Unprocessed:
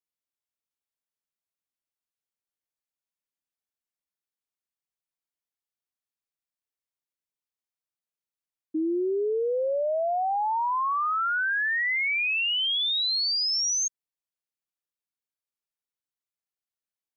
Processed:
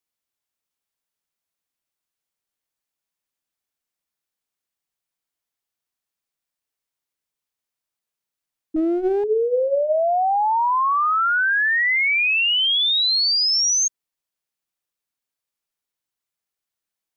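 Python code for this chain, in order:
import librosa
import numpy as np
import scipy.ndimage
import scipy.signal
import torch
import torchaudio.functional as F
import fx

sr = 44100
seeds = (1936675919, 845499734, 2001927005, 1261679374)

y = fx.hum_notches(x, sr, base_hz=60, count=10)
y = fx.running_max(y, sr, window=17, at=(8.76, 9.24))
y = F.gain(torch.from_numpy(y), 7.0).numpy()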